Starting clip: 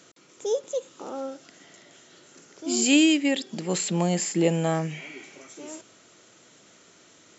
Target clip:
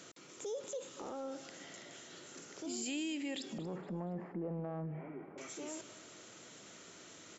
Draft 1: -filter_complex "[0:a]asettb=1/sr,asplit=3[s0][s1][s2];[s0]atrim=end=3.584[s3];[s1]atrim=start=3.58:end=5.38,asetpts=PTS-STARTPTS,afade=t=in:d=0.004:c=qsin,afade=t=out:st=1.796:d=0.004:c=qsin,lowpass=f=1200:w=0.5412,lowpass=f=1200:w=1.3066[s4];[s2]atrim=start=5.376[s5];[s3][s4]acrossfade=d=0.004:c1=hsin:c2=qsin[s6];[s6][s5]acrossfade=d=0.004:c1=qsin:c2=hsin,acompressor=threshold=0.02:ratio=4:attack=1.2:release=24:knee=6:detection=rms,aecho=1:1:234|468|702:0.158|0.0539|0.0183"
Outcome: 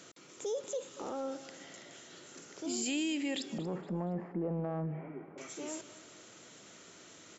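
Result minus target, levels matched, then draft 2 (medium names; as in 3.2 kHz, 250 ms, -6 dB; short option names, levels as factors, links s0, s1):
compression: peak gain reduction -5 dB
-filter_complex "[0:a]asettb=1/sr,asplit=3[s0][s1][s2];[s0]atrim=end=3.584[s3];[s1]atrim=start=3.58:end=5.38,asetpts=PTS-STARTPTS,afade=t=in:d=0.004:c=qsin,afade=t=out:st=1.796:d=0.004:c=qsin,lowpass=f=1200:w=0.5412,lowpass=f=1200:w=1.3066[s4];[s2]atrim=start=5.376[s5];[s3][s4]acrossfade=d=0.004:c1=hsin:c2=qsin[s6];[s6][s5]acrossfade=d=0.004:c1=qsin:c2=hsin,acompressor=threshold=0.00944:ratio=4:attack=1.2:release=24:knee=6:detection=rms,aecho=1:1:234|468|702:0.158|0.0539|0.0183"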